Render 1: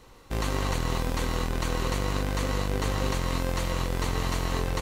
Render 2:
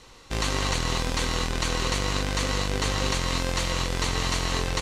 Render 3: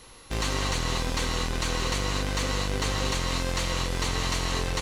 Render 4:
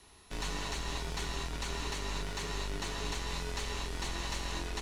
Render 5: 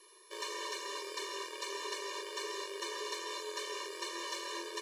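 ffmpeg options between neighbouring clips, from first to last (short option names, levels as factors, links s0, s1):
-af "lowpass=7000,highshelf=f=2200:g=11.5"
-af "asoftclip=type=tanh:threshold=0.112,aeval=exprs='val(0)+0.00178*sin(2*PI*11000*n/s)':c=same"
-af "afreqshift=-97,volume=0.355"
-af "afftfilt=real='re*eq(mod(floor(b*sr/1024/310),2),1)':imag='im*eq(mod(floor(b*sr/1024/310),2),1)':win_size=1024:overlap=0.75,volume=1.26"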